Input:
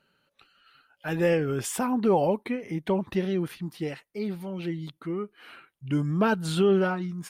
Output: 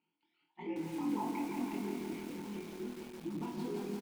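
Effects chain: sawtooth pitch modulation +4 st, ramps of 608 ms; hum notches 50/100/150/200/250 Hz; comb 5.6 ms, depth 45%; compression 10:1, threshold -24 dBFS, peak gain reduction 8 dB; echo that smears into a reverb 461 ms, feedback 54%, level -13.5 dB; granular stretch 0.55×, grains 33 ms; vowel filter u; transient shaper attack -7 dB, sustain -1 dB; flutter echo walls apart 4.2 m, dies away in 0.37 s; bit-crushed delay 169 ms, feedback 80%, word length 9-bit, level -4 dB; trim +3 dB

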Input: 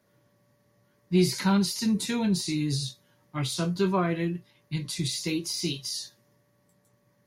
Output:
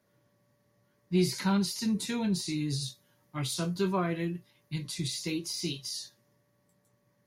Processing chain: 2.81–4.88 s: treble shelf 8.5 kHz +7 dB; trim -4 dB

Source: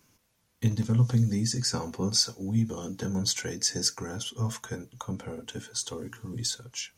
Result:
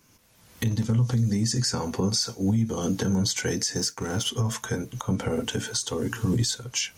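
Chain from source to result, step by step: 3.75–4.27 s: companding laws mixed up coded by A; recorder AGC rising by 31 dB/s; peak limiter -18 dBFS, peak gain reduction 10 dB; trim +2.5 dB

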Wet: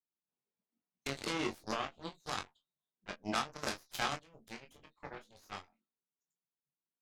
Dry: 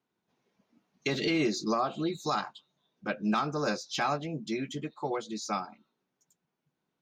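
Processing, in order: 3.13–5.38 s: treble shelf 2.3 kHz +4.5 dB; Chebyshev shaper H 3 -9 dB, 4 -35 dB, 8 -44 dB, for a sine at -17 dBFS; early reflections 22 ms -6 dB, 35 ms -12.5 dB; trim -1 dB

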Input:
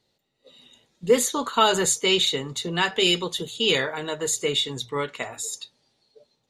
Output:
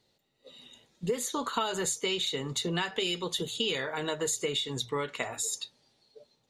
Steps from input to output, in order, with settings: compression 12:1, threshold -27 dBFS, peak gain reduction 15.5 dB

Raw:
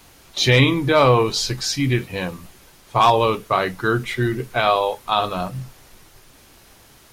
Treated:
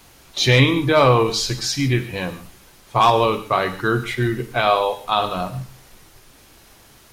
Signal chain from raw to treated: gated-style reverb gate 170 ms flat, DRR 11 dB

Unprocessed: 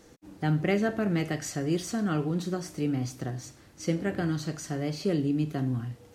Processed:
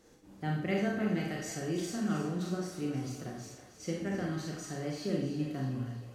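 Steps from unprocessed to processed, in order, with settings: on a send: two-band feedback delay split 450 Hz, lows 92 ms, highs 316 ms, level -10.5 dB; on the sum: Schroeder reverb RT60 0.54 s, combs from 30 ms, DRR -1 dB; trim -8.5 dB

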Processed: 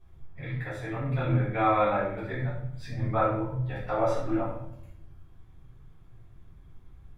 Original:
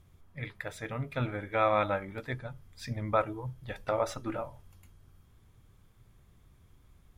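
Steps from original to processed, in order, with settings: treble shelf 3.9 kHz -10 dB; simulated room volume 160 m³, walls mixed, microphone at 3.5 m; trim -8 dB

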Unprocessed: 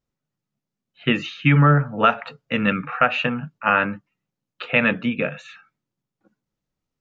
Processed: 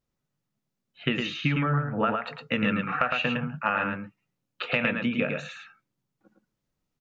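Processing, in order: 1.85–2.25 s: low-pass 2.2 kHz 12 dB/octave; compression 6:1, threshold -23 dBFS, peak gain reduction 12 dB; on a send: delay 109 ms -4.5 dB

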